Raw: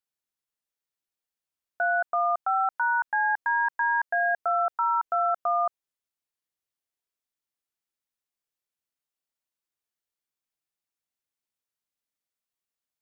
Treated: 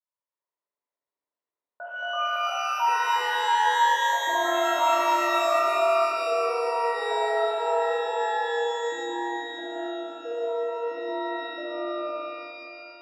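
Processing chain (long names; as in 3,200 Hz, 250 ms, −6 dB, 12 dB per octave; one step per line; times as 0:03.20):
pair of resonant band-passes 750 Hz, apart 0.76 octaves
delay with pitch and tempo change per echo 336 ms, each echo −6 semitones, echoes 2
reverb with rising layers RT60 2.9 s, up +12 semitones, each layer −8 dB, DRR −9.5 dB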